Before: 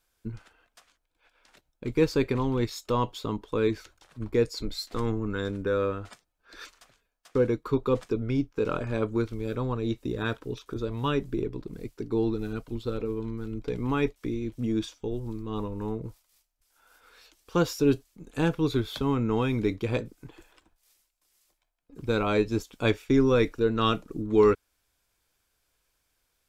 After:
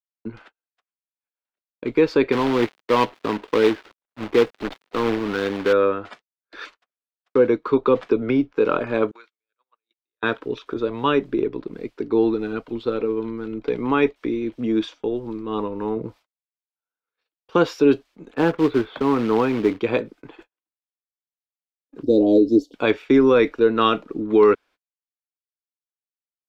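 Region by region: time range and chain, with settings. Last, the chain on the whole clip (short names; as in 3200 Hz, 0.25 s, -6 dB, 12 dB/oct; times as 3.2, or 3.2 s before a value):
2.32–5.73 switching dead time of 0.15 ms + companded quantiser 4-bit
7.85–8.53 bell 8900 Hz -4.5 dB 1.6 oct + three-band squash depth 100%
9.11–10.23 HPF 1500 Hz + gate -59 dBFS, range -17 dB + compressor 2.5:1, threshold -56 dBFS
15.96–17.56 HPF 43 Hz + low shelf 280 Hz +6 dB
18.34–19.79 LPF 1800 Hz + short-mantissa float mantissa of 2-bit
22.03–22.74 elliptic band-stop 600–4400 Hz, stop band 60 dB + small resonant body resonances 290/1300/2900 Hz, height 15 dB, ringing for 65 ms
whole clip: gate -50 dBFS, range -45 dB; three-band isolator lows -18 dB, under 220 Hz, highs -22 dB, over 4000 Hz; maximiser +15 dB; gain -5.5 dB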